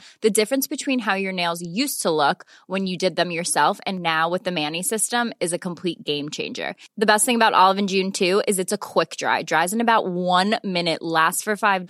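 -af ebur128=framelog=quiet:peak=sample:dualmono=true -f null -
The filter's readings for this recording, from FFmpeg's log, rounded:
Integrated loudness:
  I:         -18.1 LUFS
  Threshold: -28.2 LUFS
Loudness range:
  LRA:         3.3 LU
  Threshold: -38.2 LUFS
  LRA low:   -19.7 LUFS
  LRA high:  -16.4 LUFS
Sample peak:
  Peak:       -1.2 dBFS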